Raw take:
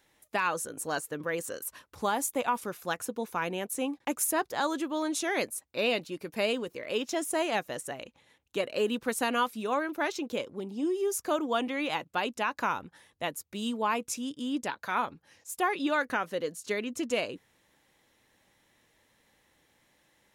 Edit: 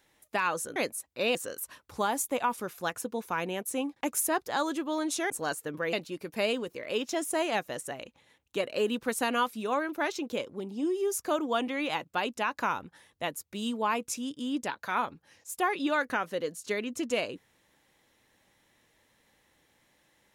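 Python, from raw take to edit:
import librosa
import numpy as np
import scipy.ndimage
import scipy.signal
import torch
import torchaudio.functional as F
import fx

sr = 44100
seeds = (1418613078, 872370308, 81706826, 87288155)

y = fx.edit(x, sr, fx.swap(start_s=0.76, length_s=0.63, other_s=5.34, other_length_s=0.59), tone=tone)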